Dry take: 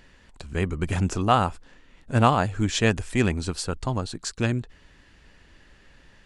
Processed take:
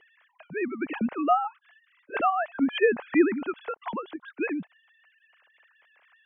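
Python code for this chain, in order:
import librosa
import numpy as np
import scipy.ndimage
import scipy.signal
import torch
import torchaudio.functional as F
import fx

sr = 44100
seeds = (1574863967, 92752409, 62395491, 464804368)

y = fx.sine_speech(x, sr)
y = fx.lowpass(y, sr, hz=2800.0, slope=24, at=(0.97, 1.45))
y = fx.env_lowpass_down(y, sr, base_hz=1200.0, full_db=-15.5)
y = fx.peak_eq(y, sr, hz=940.0, db=6.5, octaves=2.9, at=(2.73, 3.52))
y = F.gain(torch.from_numpy(y), -3.5).numpy()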